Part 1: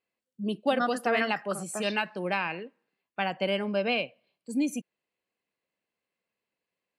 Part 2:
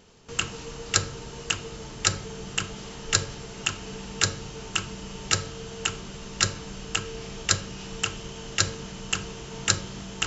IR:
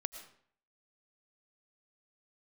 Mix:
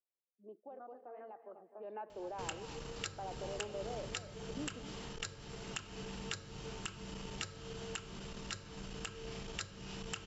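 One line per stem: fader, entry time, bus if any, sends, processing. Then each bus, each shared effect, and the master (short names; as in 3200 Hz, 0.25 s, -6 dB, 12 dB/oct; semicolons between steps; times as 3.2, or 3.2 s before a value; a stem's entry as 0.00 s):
1.74 s -16 dB -> 1.96 s -8.5 dB, 0.00 s, no send, echo send -12.5 dB, Chebyshev band-pass 360–890 Hz, order 2; limiter -27.5 dBFS, peak gain reduction 11 dB
-5.5 dB, 2.10 s, no send, no echo send, compressor 16:1, threshold -32 dBFS, peak gain reduction 17.5 dB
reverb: off
echo: feedback echo 0.256 s, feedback 41%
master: bell 6400 Hz -5.5 dB 0.31 oct; core saturation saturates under 420 Hz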